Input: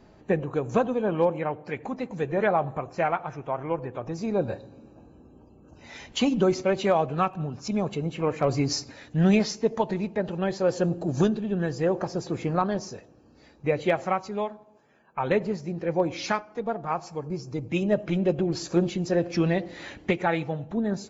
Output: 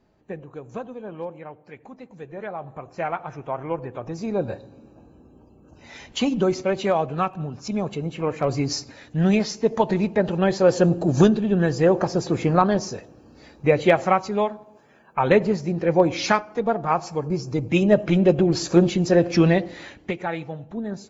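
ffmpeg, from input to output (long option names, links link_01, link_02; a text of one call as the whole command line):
ffmpeg -i in.wav -af "volume=7dB,afade=type=in:start_time=2.55:duration=0.84:silence=0.281838,afade=type=in:start_time=9.48:duration=0.51:silence=0.501187,afade=type=out:start_time=19.48:duration=0.47:silence=0.316228" out.wav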